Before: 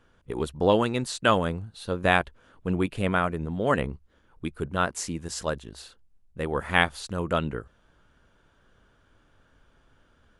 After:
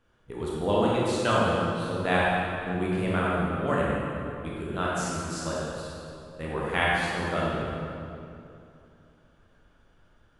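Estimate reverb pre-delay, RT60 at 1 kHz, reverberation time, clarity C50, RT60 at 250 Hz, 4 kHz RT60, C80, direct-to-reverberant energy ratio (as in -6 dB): 18 ms, 2.6 s, 2.7 s, -3.5 dB, 3.0 s, 1.9 s, -1.5 dB, -6.0 dB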